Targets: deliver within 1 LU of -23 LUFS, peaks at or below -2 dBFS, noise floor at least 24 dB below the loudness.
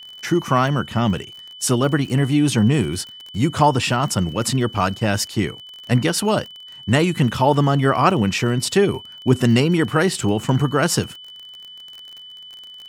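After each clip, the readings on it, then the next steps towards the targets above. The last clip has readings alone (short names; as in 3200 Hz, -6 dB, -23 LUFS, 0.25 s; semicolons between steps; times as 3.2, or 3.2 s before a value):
ticks 33/s; steady tone 3000 Hz; tone level -37 dBFS; loudness -19.5 LUFS; peak -2.0 dBFS; loudness target -23.0 LUFS
-> de-click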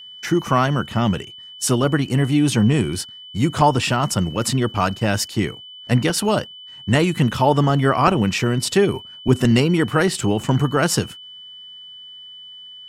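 ticks 0/s; steady tone 3000 Hz; tone level -37 dBFS
-> notch 3000 Hz, Q 30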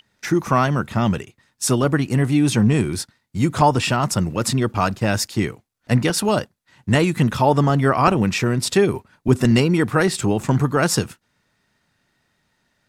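steady tone none; loudness -19.5 LUFS; peak -2.0 dBFS; loudness target -23.0 LUFS
-> gain -3.5 dB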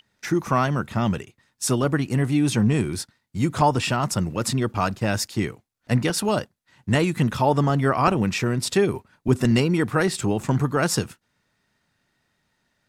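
loudness -23.0 LUFS; peak -5.5 dBFS; noise floor -74 dBFS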